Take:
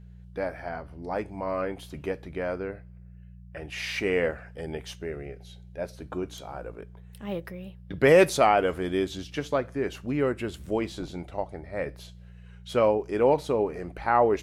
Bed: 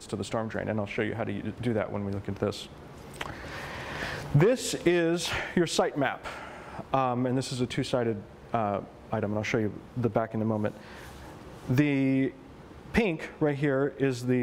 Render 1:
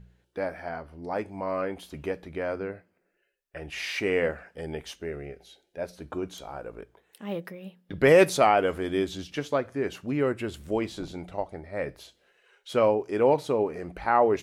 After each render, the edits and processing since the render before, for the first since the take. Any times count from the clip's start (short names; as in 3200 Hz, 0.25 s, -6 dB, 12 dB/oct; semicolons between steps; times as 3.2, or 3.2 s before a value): de-hum 60 Hz, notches 3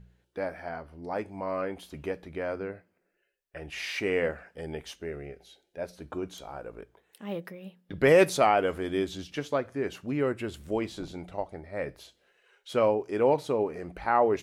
gain -2 dB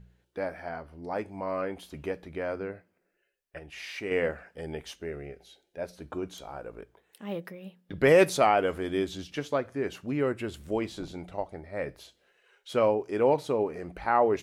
3.59–4.11 gain -5.5 dB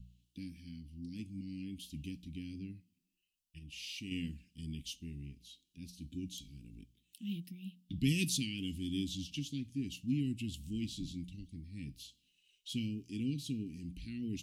Chebyshev band-stop 270–2800 Hz, order 4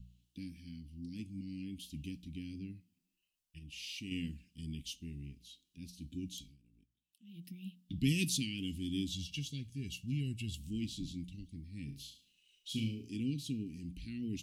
6.42–7.48 dip -16 dB, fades 0.15 s; 9.12–10.57 comb 1.8 ms; 11.85–13.16 flutter echo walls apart 6.1 m, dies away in 0.39 s